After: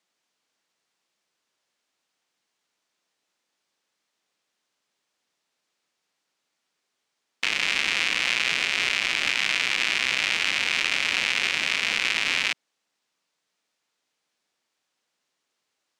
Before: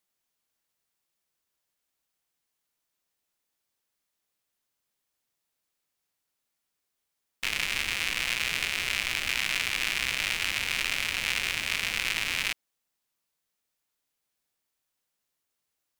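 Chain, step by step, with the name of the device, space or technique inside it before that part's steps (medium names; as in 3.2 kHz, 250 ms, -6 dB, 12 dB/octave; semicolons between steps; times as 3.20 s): DJ mixer with the lows and highs turned down (three-band isolator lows -18 dB, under 160 Hz, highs -22 dB, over 7.6 kHz; peak limiter -16.5 dBFS, peak gain reduction 5.5 dB); trim +8 dB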